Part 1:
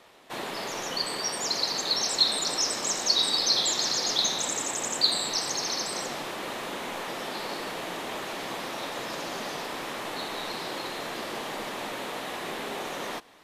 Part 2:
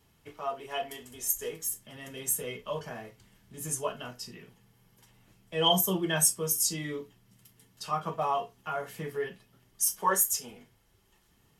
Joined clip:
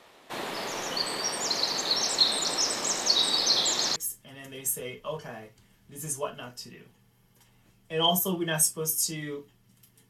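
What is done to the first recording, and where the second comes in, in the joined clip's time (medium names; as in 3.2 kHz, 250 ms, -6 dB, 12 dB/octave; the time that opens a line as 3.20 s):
part 1
3.96 s: go over to part 2 from 1.58 s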